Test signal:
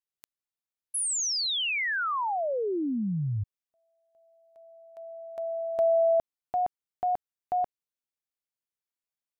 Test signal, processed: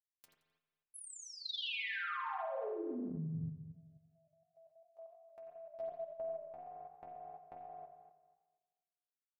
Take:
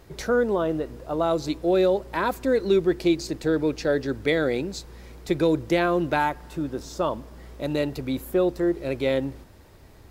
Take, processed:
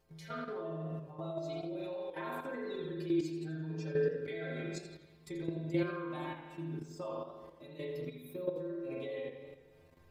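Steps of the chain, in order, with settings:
noise reduction from a noise print of the clip's start 9 dB
downward compressor 1.5 to 1, threshold −45 dBFS
stiff-string resonator 79 Hz, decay 0.45 s, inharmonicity 0.008
spring reverb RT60 1.3 s, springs 44 ms, chirp 30 ms, DRR −2.5 dB
output level in coarse steps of 11 dB
feedback echo with a swinging delay time 85 ms, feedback 33%, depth 143 cents, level −12 dB
level +4 dB

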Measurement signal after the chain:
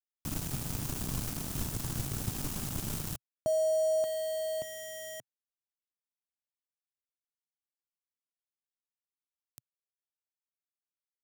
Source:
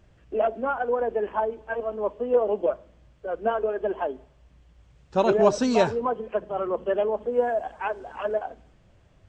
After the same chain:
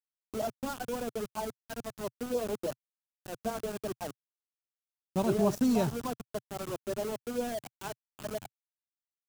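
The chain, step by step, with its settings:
centre clipping without the shift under −26.5 dBFS
octave-band graphic EQ 125/250/500/1,000/2,000/4,000 Hz +9/+3/−7/−4/−9/−5 dB
level −4.5 dB

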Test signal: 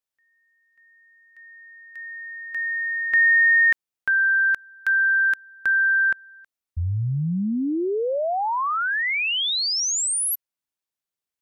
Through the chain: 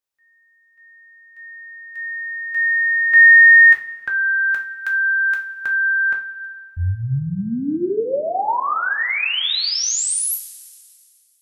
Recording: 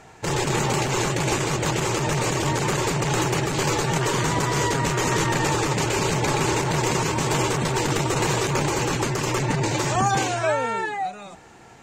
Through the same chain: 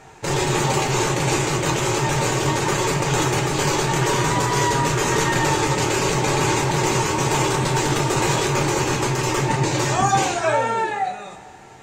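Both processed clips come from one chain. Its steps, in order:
coupled-rooms reverb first 0.31 s, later 2.2 s, from −18 dB, DRR 0.5 dB

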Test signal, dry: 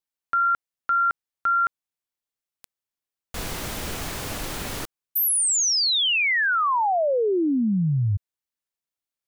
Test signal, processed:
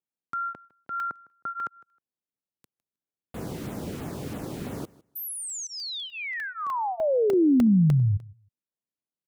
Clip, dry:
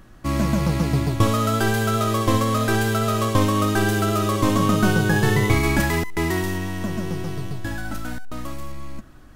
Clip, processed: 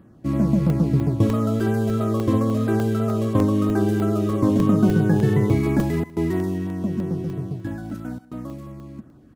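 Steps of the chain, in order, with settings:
auto-filter notch saw down 3 Hz 550–6,600 Hz
high-pass filter 140 Hz 12 dB per octave
tilt shelving filter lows +9.5 dB, about 720 Hz
on a send: repeating echo 157 ms, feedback 16%, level −22 dB
on the sum: regular buffer underruns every 0.30 s, samples 64, zero, from 0:00.70
level −3.5 dB

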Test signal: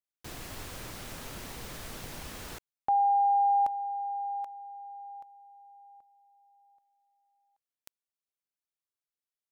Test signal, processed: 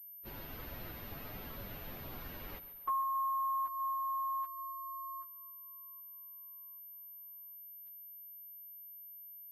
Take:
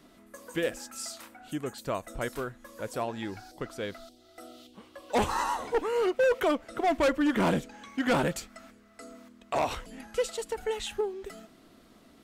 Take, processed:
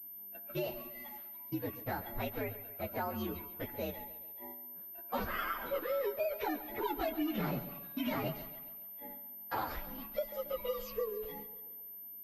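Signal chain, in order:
partials spread apart or drawn together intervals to 125%
noise gate −49 dBFS, range −12 dB
downward compressor 6 to 1, threshold −33 dBFS
high-frequency loss of the air 120 metres
on a send: echo with a time of its own for lows and highs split 310 Hz, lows 105 ms, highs 138 ms, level −14 dB
on the sum: switching amplifier with a slow clock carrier 13,000 Hz
level +1 dB

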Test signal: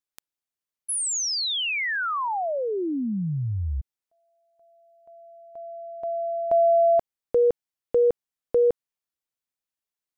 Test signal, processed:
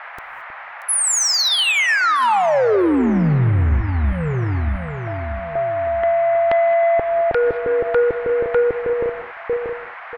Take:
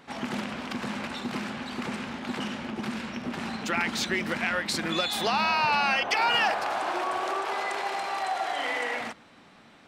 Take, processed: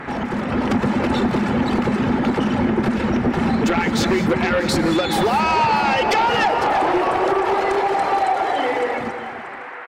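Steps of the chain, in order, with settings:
fade-out on the ending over 2.95 s
reverb reduction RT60 0.79 s
tilt shelving filter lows +9.5 dB, about 890 Hz
comb filter 2.3 ms, depth 32%
delay that swaps between a low-pass and a high-pass 317 ms, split 2,200 Hz, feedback 63%, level −12 dB
downward compressor 4 to 1, threshold −34 dBFS
sine wavefolder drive 13 dB, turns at −16.5 dBFS
automatic gain control gain up to 6 dB
reverb whose tail is shaped and stops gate 240 ms rising, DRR 11 dB
noise in a band 660–2,100 Hz −32 dBFS
level −3 dB

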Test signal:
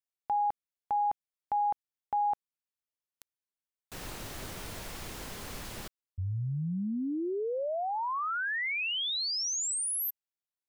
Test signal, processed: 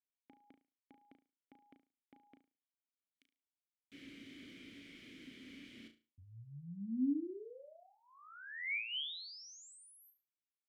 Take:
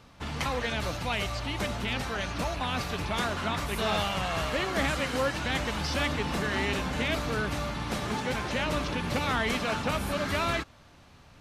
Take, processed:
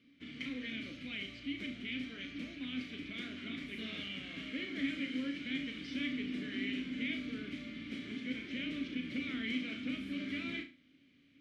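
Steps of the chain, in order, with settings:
formant filter i
flutter between parallel walls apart 6.1 metres, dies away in 0.32 s
level +1 dB

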